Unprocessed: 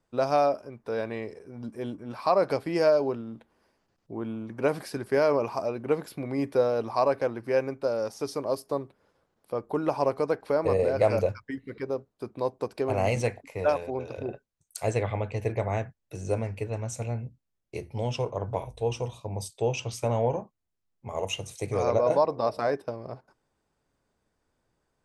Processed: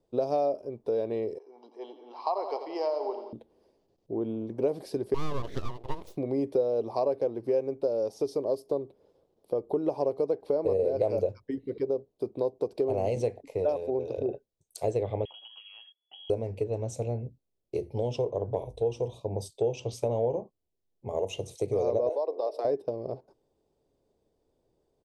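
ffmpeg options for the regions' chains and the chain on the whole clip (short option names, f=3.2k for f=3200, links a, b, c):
-filter_complex "[0:a]asettb=1/sr,asplit=3[a][b][c];[a]atrim=end=1.384[d];[b]atrim=start=1.38:end=3.33,asetpts=PTS-STARTPTS,afade=t=in:d=0.004:c=qsin,afade=t=out:st=1.946:d=0.004:c=qsin,highpass=f=490:w=0.5412,highpass=f=490:w=1.3066,equalizer=f=560:t=q:w=4:g=-9,equalizer=f=890:t=q:w=4:g=4,equalizer=f=1.9k:t=q:w=4:g=-6,equalizer=f=3.7k:t=q:w=4:g=-4,lowpass=f=5.1k:w=0.5412,lowpass=f=5.1k:w=1.3066,aecho=1:1:1:0.49,atrim=end_sample=85995,aecho=1:1:86|172|258|344|430|516|602:0.282|0.169|0.101|0.0609|0.0365|0.0219|0.0131,atrim=end_sample=85995[e];[c]atrim=start=3.326[f];[d][e]acrossfade=d=0.004:c1=hsin:c2=qsin[g];[g][f]acrossfade=d=0.004:c1=qsin:c2=hsin,asettb=1/sr,asplit=3[h][i][j];[h]atrim=end=5.144[k];[i]atrim=start=5.14:end=6.17,asetpts=PTS-STARTPTS,afade=t=in:d=0.004:c=qsin,afade=t=out:st=1.026:d=0.004:c=qsin,lowshelf=f=400:t=q:w=3:g=-9.5,aeval=exprs='abs(val(0))':c=same[l];[j]atrim=start=6.166[m];[k][l]acrossfade=d=0.004:c1=hsin:c2=qsin[n];[n][m]acrossfade=d=0.004:c1=qsin:c2=hsin,asettb=1/sr,asplit=3[o][p][q];[o]atrim=end=15.254[r];[p]atrim=start=15.25:end=16.3,asetpts=PTS-STARTPTS,afade=t=in:d=0.004:c=qsin,afade=t=out:st=1.046:d=0.004:c=qsin,equalizer=f=150:w=3.9:g=-7,acompressor=threshold=-40dB:ratio=20:attack=3.2:release=140:knee=1:detection=peak,lowpass=f=2.9k:t=q:w=0.5098,lowpass=f=2.9k:t=q:w=0.6013,lowpass=f=2.9k:t=q:w=0.9,lowpass=f=2.9k:t=q:w=2.563,afreqshift=-3400[s];[q]atrim=start=16.296[t];[r][s]acrossfade=d=0.004:c1=hsin:c2=qsin[u];[u][t]acrossfade=d=0.004:c1=qsin:c2=hsin,asettb=1/sr,asplit=3[v][w][x];[v]atrim=end=22.094[y];[w]atrim=start=22.09:end=22.65,asetpts=PTS-STARTPTS,afade=t=in:d=0.004:c=qsin,afade=t=out:st=0.556:d=0.004:c=qsin,highpass=f=380:w=0.5412,highpass=f=380:w=1.3066,acompressor=threshold=-34dB:ratio=1.5:attack=3.2:release=140:knee=1:detection=peak[z];[x]atrim=start=22.646[aa];[y][z]acrossfade=d=0.004:c1=hsin:c2=qsin[ab];[ab][aa]acrossfade=d=0.004:c1=qsin:c2=hsin,firequalizer=gain_entry='entry(220,0);entry(400,9);entry(1400,-15);entry(3500,-2);entry(6800,-6)':delay=0.05:min_phase=1,acompressor=threshold=-27dB:ratio=2.5"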